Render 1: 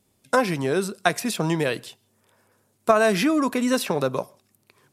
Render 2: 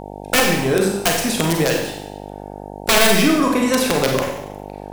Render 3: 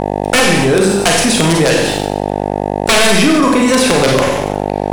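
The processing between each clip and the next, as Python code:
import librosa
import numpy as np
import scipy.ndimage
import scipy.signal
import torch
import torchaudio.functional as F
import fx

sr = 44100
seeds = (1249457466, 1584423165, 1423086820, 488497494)

y1 = (np.mod(10.0 ** (11.5 / 20.0) * x + 1.0, 2.0) - 1.0) / 10.0 ** (11.5 / 20.0)
y1 = fx.rev_schroeder(y1, sr, rt60_s=0.84, comb_ms=31, drr_db=0.5)
y1 = fx.dmg_buzz(y1, sr, base_hz=50.0, harmonics=18, level_db=-37.0, tilt_db=0, odd_only=False)
y1 = y1 * librosa.db_to_amplitude(3.5)
y2 = scipy.signal.sosfilt(scipy.signal.cheby1(6, 1.0, 11000.0, 'lowpass', fs=sr, output='sos'), y1)
y2 = fx.leveller(y2, sr, passes=2)
y2 = fx.env_flatten(y2, sr, amount_pct=50)
y2 = y2 * librosa.db_to_amplitude(-1.0)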